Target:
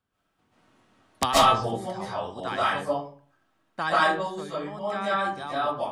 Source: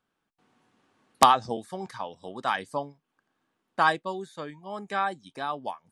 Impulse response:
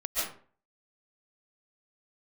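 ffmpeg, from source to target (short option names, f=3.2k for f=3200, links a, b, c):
-filter_complex "[0:a]equalizer=f=86:w=1.7:g=14.5,acrossover=split=620|1300[a][b][c];[b]acompressor=threshold=-34dB:ratio=6[d];[a][d][c]amix=inputs=3:normalize=0[e];[1:a]atrim=start_sample=2205[f];[e][f]afir=irnorm=-1:irlink=0,volume=-2dB"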